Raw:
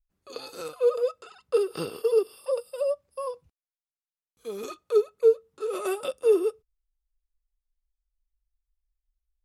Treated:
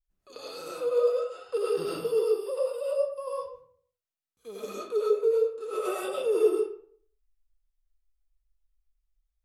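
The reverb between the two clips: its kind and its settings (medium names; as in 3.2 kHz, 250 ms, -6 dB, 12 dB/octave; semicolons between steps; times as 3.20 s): algorithmic reverb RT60 0.56 s, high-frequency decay 0.65×, pre-delay 60 ms, DRR -6 dB; trim -7 dB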